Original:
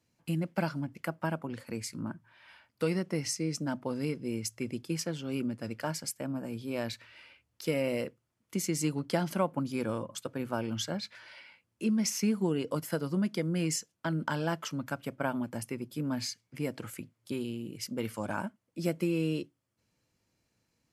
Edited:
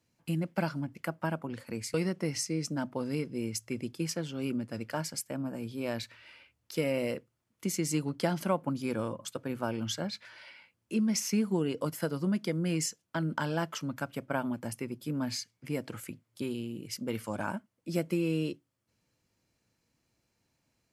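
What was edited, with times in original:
1.94–2.84 s: delete

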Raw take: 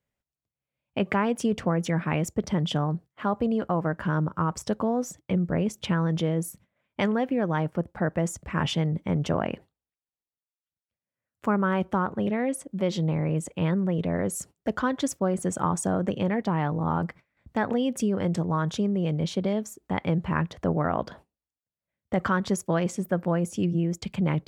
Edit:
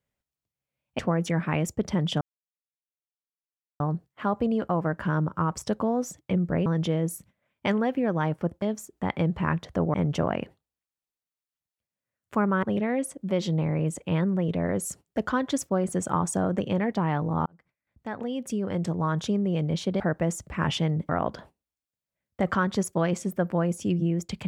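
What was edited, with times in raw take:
0.99–1.58 s: delete
2.80 s: insert silence 1.59 s
5.66–6.00 s: delete
7.96–9.05 s: swap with 19.50–20.82 s
11.74–12.13 s: delete
16.96–18.65 s: fade in

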